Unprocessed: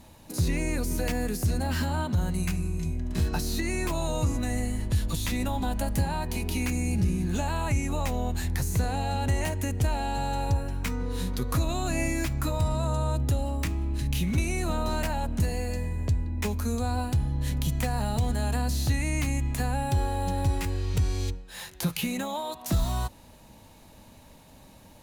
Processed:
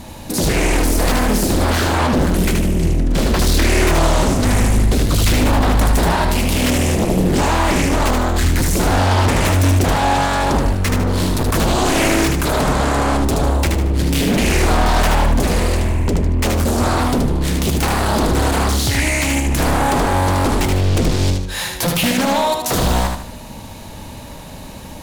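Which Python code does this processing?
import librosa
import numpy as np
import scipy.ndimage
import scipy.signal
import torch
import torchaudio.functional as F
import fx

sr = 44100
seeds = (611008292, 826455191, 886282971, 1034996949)

y = fx.low_shelf(x, sr, hz=320.0, db=-8.5, at=(18.79, 19.46))
y = fx.fold_sine(y, sr, drive_db=13, ceiling_db=-13.5)
y = fx.echo_feedback(y, sr, ms=76, feedback_pct=38, wet_db=-4)
y = fx.doppler_dist(y, sr, depth_ms=0.57)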